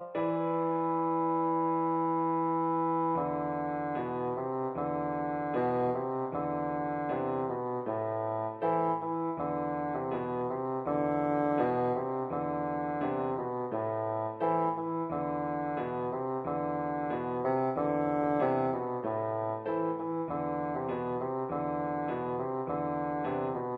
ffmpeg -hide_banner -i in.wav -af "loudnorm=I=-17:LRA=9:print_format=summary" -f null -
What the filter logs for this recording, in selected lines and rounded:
Input Integrated:    -32.3 LUFS
Input True Peak:     -15.9 dBTP
Input LRA:             3.2 LU
Input Threshold:     -42.3 LUFS